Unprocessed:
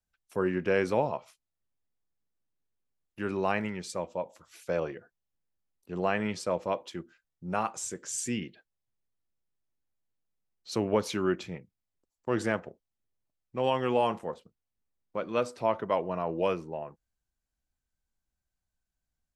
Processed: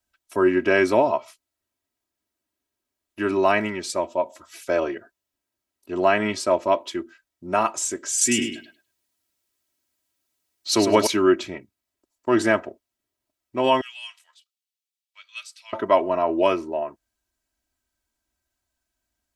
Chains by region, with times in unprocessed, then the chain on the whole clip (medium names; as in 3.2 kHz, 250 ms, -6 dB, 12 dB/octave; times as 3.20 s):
8.21–11.07 s: treble shelf 2.3 kHz +8.5 dB + feedback delay 103 ms, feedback 18%, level -7 dB
13.81–15.73 s: ladder high-pass 2.3 kHz, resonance 25% + transformer saturation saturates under 1.8 kHz
whole clip: high-pass 150 Hz 6 dB/octave; comb 3.1 ms, depth 78%; trim +8 dB